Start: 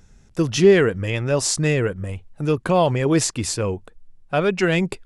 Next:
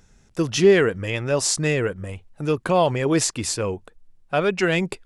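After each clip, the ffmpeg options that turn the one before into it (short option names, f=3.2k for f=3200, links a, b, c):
-af "lowshelf=f=230:g=-5.5"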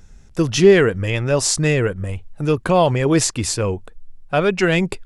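-af "lowshelf=f=87:g=11.5,volume=3dB"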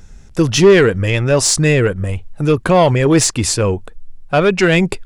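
-af "acontrast=70,volume=-1dB"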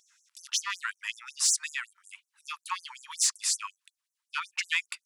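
-af "afftfilt=real='re*gte(b*sr/1024,850*pow(5900/850,0.5+0.5*sin(2*PI*5.4*pts/sr)))':imag='im*gte(b*sr/1024,850*pow(5900/850,0.5+0.5*sin(2*PI*5.4*pts/sr)))':win_size=1024:overlap=0.75,volume=-9dB"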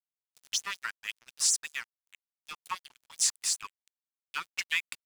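-af "aeval=exprs='sgn(val(0))*max(abs(val(0))-0.01,0)':c=same"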